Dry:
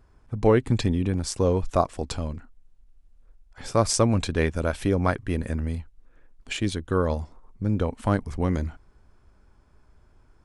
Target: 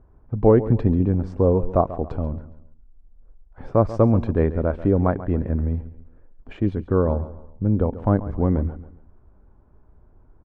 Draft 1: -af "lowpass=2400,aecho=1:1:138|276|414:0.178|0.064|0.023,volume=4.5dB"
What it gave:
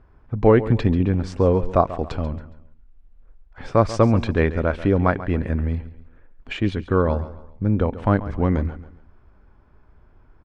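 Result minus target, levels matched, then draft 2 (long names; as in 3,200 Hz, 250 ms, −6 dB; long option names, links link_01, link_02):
2,000 Hz band +10.5 dB
-af "lowpass=870,aecho=1:1:138|276|414:0.178|0.064|0.023,volume=4.5dB"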